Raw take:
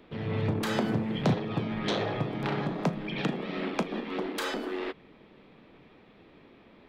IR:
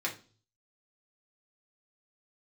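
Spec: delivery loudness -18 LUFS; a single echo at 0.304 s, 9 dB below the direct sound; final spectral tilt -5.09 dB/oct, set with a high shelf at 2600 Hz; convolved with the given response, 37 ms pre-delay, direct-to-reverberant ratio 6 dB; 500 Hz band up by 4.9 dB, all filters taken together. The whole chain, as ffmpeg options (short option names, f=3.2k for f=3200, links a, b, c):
-filter_complex "[0:a]equalizer=f=500:t=o:g=6,highshelf=f=2.6k:g=3,aecho=1:1:304:0.355,asplit=2[a][b];[1:a]atrim=start_sample=2205,adelay=37[c];[b][c]afir=irnorm=-1:irlink=0,volume=-11.5dB[d];[a][d]amix=inputs=2:normalize=0,volume=9.5dB"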